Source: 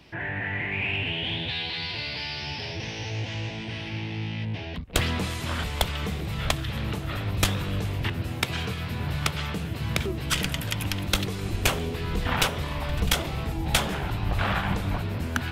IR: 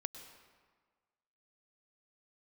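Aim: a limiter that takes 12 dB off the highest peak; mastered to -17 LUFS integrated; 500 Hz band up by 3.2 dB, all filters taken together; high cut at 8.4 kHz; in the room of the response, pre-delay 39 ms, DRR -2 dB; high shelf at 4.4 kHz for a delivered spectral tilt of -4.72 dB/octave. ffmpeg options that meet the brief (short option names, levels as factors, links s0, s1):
-filter_complex "[0:a]lowpass=8400,equalizer=f=500:t=o:g=4,highshelf=f=4400:g=4.5,alimiter=limit=0.0944:level=0:latency=1,asplit=2[s0][s1];[1:a]atrim=start_sample=2205,adelay=39[s2];[s1][s2]afir=irnorm=-1:irlink=0,volume=1.58[s3];[s0][s3]amix=inputs=2:normalize=0,volume=2.82"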